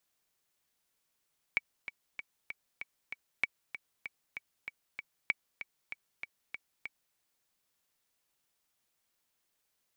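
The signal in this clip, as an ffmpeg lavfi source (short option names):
-f lavfi -i "aevalsrc='pow(10,(-14.5-12*gte(mod(t,6*60/193),60/193))/20)*sin(2*PI*2270*mod(t,60/193))*exp(-6.91*mod(t,60/193)/0.03)':d=5.59:s=44100"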